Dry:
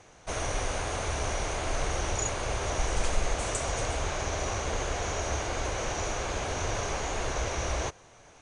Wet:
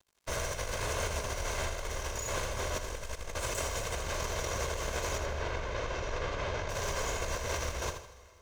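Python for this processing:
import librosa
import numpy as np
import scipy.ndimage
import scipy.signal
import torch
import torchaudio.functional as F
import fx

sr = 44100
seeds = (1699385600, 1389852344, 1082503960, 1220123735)

p1 = fx.lower_of_two(x, sr, delay_ms=1.9)
p2 = fx.over_compress(p1, sr, threshold_db=-34.0, ratio=-1.0)
p3 = np.sign(p2) * np.maximum(np.abs(p2) - 10.0 ** (-47.5 / 20.0), 0.0)
p4 = fx.air_absorb(p3, sr, metres=170.0, at=(5.18, 6.69))
p5 = p4 + fx.echo_feedback(p4, sr, ms=79, feedback_pct=36, wet_db=-8.5, dry=0)
y = fx.rev_plate(p5, sr, seeds[0], rt60_s=2.7, hf_ratio=0.95, predelay_ms=0, drr_db=15.5)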